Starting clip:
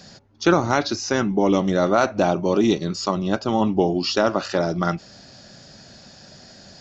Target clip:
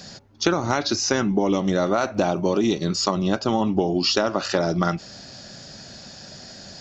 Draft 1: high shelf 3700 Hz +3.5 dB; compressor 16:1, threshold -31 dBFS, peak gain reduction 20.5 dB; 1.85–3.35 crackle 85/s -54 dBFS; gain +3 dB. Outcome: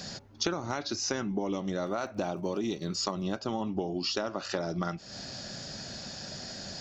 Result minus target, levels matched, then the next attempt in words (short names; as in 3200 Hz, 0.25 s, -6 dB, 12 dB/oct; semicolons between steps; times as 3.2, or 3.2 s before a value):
compressor: peak gain reduction +11.5 dB
high shelf 3700 Hz +3.5 dB; compressor 16:1, threshold -19 dBFS, peak gain reduction 9 dB; 1.85–3.35 crackle 85/s -54 dBFS; gain +3 dB